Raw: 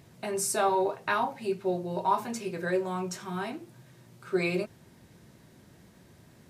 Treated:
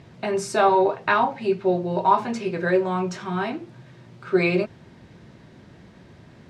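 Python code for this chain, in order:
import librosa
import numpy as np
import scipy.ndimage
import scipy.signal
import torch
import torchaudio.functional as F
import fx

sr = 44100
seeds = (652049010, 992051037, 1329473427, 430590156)

y = scipy.signal.sosfilt(scipy.signal.butter(2, 4000.0, 'lowpass', fs=sr, output='sos'), x)
y = F.gain(torch.from_numpy(y), 8.0).numpy()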